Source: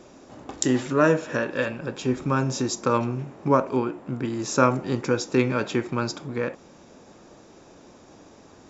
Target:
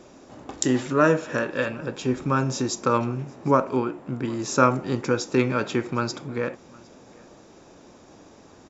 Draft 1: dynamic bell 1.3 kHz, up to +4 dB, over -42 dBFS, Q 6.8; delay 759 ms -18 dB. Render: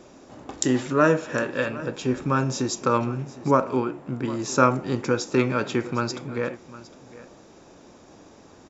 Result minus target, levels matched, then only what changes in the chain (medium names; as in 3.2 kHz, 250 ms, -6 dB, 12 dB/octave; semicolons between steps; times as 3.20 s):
echo-to-direct +8 dB
change: delay 759 ms -26 dB